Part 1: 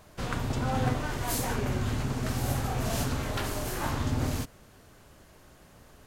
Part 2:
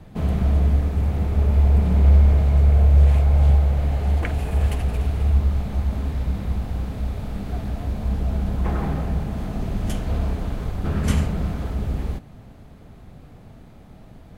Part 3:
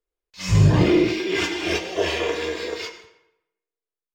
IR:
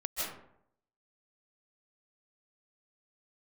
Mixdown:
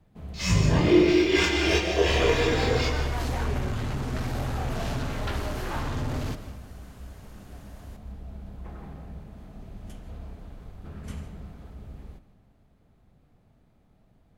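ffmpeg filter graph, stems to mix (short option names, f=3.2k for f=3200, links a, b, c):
-filter_complex "[0:a]acrossover=split=4900[a][b];[b]acompressor=threshold=-52dB:ratio=4:attack=1:release=60[c];[a][c]amix=inputs=2:normalize=0,asoftclip=type=tanh:threshold=-26.5dB,adelay=1900,volume=0.5dB,asplit=2[d][e];[e]volume=-13dB[f];[1:a]volume=-18.5dB,asplit=2[g][h];[h]volume=-15.5dB[i];[2:a]alimiter=limit=-12.5dB:level=0:latency=1:release=349,flanger=delay=22.5:depth=2:speed=2,volume=2dB,asplit=2[j][k];[k]volume=-8.5dB[l];[3:a]atrim=start_sample=2205[m];[f][i][l]amix=inputs=3:normalize=0[n];[n][m]afir=irnorm=-1:irlink=0[o];[d][g][j][o]amix=inputs=4:normalize=0"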